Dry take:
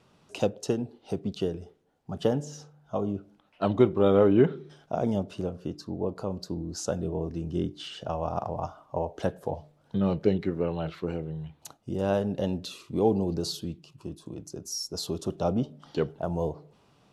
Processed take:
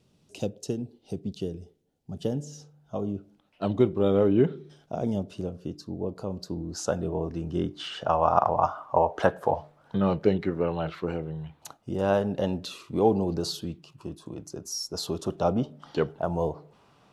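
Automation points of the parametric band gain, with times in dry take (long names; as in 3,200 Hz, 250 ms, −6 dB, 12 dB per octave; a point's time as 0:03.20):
parametric band 1,200 Hz 2.1 octaves
0:02.26 −14 dB
0:02.95 −5.5 dB
0:06.11 −5.5 dB
0:06.89 +6 dB
0:07.54 +6 dB
0:08.28 +14.5 dB
0:09.56 +14.5 dB
0:10.21 +5.5 dB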